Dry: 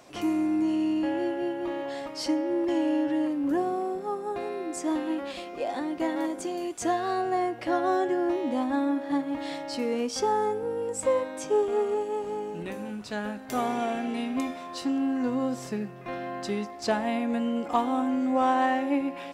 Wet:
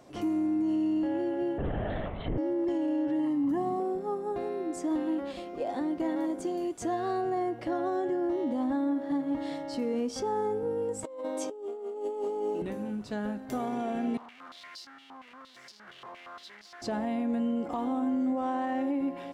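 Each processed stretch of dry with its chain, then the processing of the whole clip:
1.58–2.38 s: peaking EQ 1.9 kHz +6.5 dB 2.4 oct + LPC vocoder at 8 kHz whisper
3.19–3.80 s: high-pass 83 Hz + comb 1 ms, depth 78%
11.04–12.62 s: high-pass 280 Hz 24 dB/octave + peaking EQ 1.7 kHz -10 dB 0.45 oct + compressor with a negative ratio -35 dBFS
14.17–16.82 s: one-bit comparator + step-sequenced band-pass 8.6 Hz 1–4.8 kHz
whole clip: tilt shelf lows +5 dB, about 710 Hz; peak limiter -20.5 dBFS; band-stop 2.5 kHz, Q 16; trim -2.5 dB

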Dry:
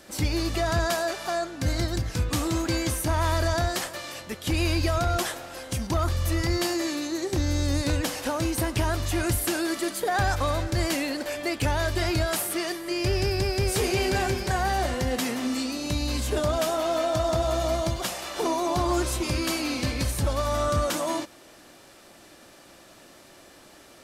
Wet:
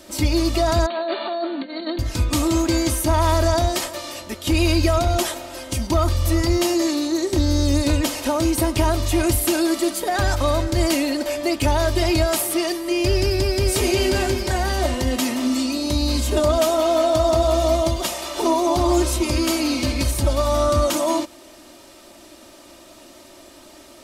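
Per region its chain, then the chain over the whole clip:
0.86–1.99 s: compressor with a negative ratio -31 dBFS + brick-wall FIR band-pass 190–4600 Hz
whole clip: peaking EQ 1.6 kHz -6 dB 0.49 oct; comb 3.2 ms, depth 61%; trim +4.5 dB

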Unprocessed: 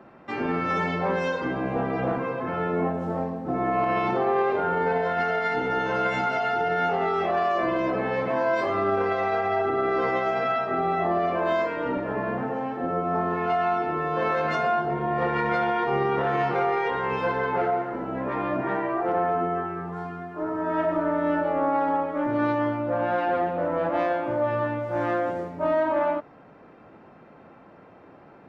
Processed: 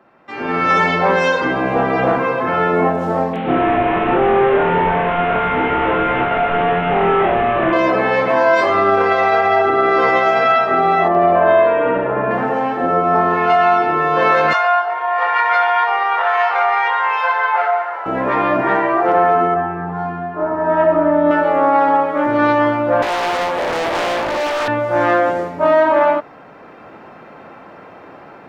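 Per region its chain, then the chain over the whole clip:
3.33–7.73 s: one-bit delta coder 16 kbps, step -38 dBFS + doubling 28 ms -3 dB
11.08–12.31 s: distance through air 440 m + upward compressor, threshold -38 dBFS + flutter echo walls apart 11.7 m, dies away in 0.89 s
14.53–18.06 s: inverse Chebyshev high-pass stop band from 160 Hz, stop band 70 dB + treble shelf 4.4 kHz -10.5 dB
19.54–21.31 s: low-pass 1.1 kHz 6 dB/octave + doubling 24 ms -4 dB
23.02–24.68 s: high-pass 270 Hz + overload inside the chain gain 29 dB + loudspeaker Doppler distortion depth 0.83 ms
whole clip: bass shelf 430 Hz -9 dB; level rider gain up to 15 dB

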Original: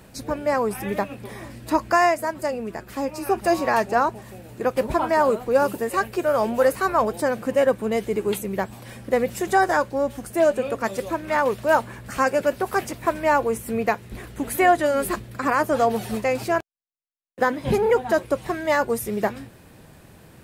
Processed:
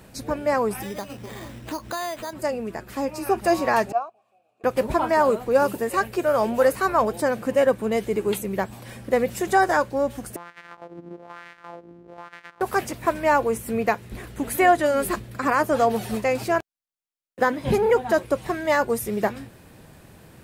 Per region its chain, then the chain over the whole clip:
0.82–2.33 s: compression 2.5:1, threshold -31 dBFS + careless resampling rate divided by 8×, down none, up hold
3.92–4.64 s: vowel filter a + treble shelf 4.4 kHz +11 dB + upward expansion, over -42 dBFS
10.36–12.61 s: sorted samples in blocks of 256 samples + compression 8:1, threshold -27 dBFS + LFO band-pass sine 1.1 Hz 290–1900 Hz
whole clip: none

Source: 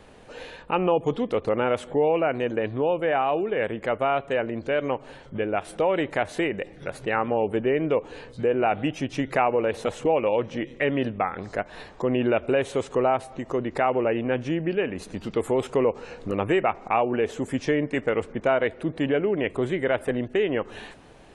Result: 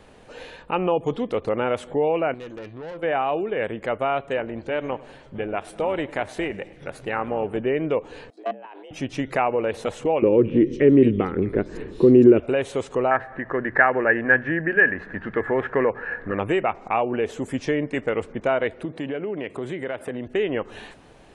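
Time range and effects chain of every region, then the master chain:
2.34–3.03 s: treble shelf 4.2 kHz +4 dB + feedback comb 170 Hz, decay 0.23 s + valve stage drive 32 dB, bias 0.4
4.37–7.58 s: AM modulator 300 Hz, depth 25% + modulated delay 105 ms, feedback 59%, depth 103 cents, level -21 dB
8.30–8.91 s: level held to a coarse grid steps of 20 dB + valve stage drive 19 dB, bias 0.55 + frequency shift +200 Hz
10.22–12.40 s: resonant low shelf 520 Hz +10.5 dB, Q 3 + compression 1.5:1, threshold -15 dBFS + bands offset in time lows, highs 220 ms, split 2.8 kHz
13.11–16.39 s: resonant low-pass 1.7 kHz, resonance Q 15 + hum notches 60/120/180 Hz
18.85–20.27 s: high-pass 110 Hz + compression 2.5:1, threshold -27 dBFS
whole clip: none

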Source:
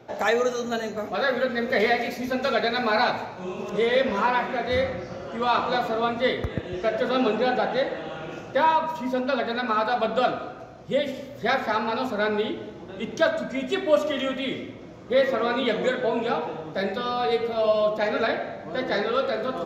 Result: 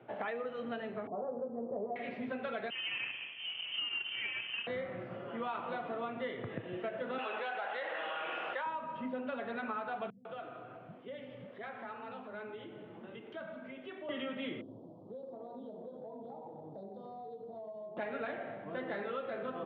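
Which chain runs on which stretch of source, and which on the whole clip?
1.07–1.96 s: steep low-pass 1 kHz 48 dB/octave + peaking EQ 88 Hz -4.5 dB 1.5 oct
2.70–4.67 s: median filter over 25 samples + frequency inversion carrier 3.3 kHz
7.18–8.66 s: high-pass 870 Hz + level flattener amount 70%
10.10–14.09 s: compression 3:1, threshold -37 dBFS + bands offset in time lows, highs 150 ms, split 240 Hz
14.61–17.97 s: Chebyshev band-stop 880–4600 Hz, order 3 + hum notches 60/120/180/240/300/360/420/480/540 Hz + compression, threshold -36 dBFS
whole clip: Chebyshev band-pass 110–3100 Hz, order 4; compression, threshold -28 dBFS; trim -7.5 dB

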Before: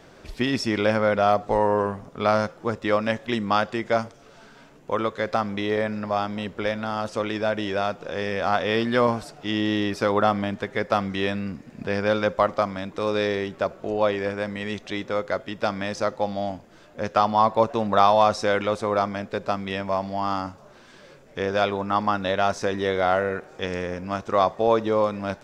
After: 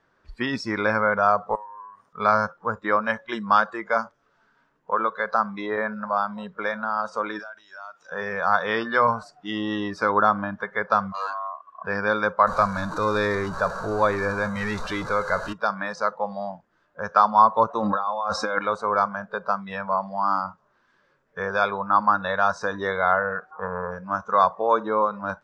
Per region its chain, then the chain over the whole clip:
1.55–2.13 s: tilt EQ +3.5 dB/octave + compression 8:1, threshold -37 dBFS
7.39–8.12 s: tilt EQ +4 dB/octave + compression 12:1, threshold -33 dBFS + transient shaper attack -9 dB, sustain -3 dB
11.12–11.85 s: valve stage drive 24 dB, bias 0.45 + ring modulator 880 Hz
12.47–15.53 s: jump at every zero crossing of -27 dBFS + bass shelf 65 Hz +12 dB
17.80–18.59 s: comb 3.7 ms, depth 43% + compressor with a negative ratio -25 dBFS
23.51–23.91 s: resonant low-pass 1.1 kHz, resonance Q 2.9 + tape noise reduction on one side only encoder only
whole clip: low-pass 6.2 kHz 12 dB/octave; spectral noise reduction 17 dB; high-order bell 1.3 kHz +9 dB 1.2 oct; trim -3 dB

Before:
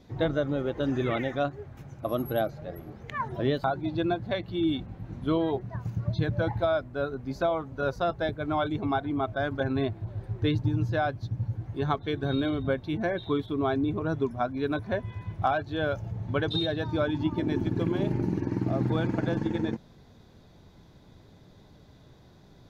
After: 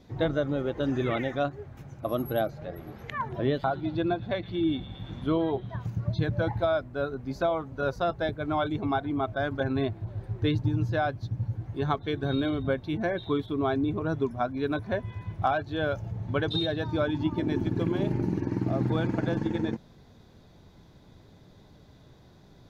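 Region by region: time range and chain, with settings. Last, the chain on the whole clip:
2.61–5.86 s: treble shelf 5.1 kHz -9 dB + feedback echo behind a high-pass 114 ms, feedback 66%, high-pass 3.2 kHz, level -10.5 dB + tape noise reduction on one side only encoder only
whole clip: none

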